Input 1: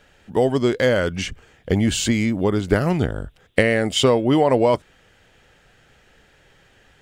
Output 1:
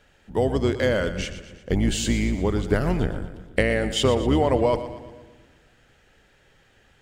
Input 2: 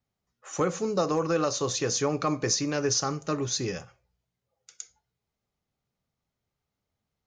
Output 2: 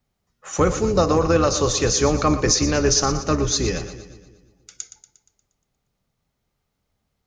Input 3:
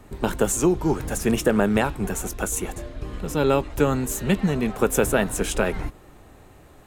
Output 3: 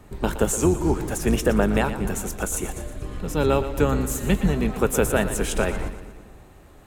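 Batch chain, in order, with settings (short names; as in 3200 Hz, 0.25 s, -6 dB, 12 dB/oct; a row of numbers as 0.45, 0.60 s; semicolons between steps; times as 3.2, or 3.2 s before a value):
octaver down 2 oct, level -2 dB; split-band echo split 400 Hz, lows 0.165 s, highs 0.118 s, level -12 dB; normalise peaks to -6 dBFS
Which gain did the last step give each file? -4.5, +7.5, -1.0 dB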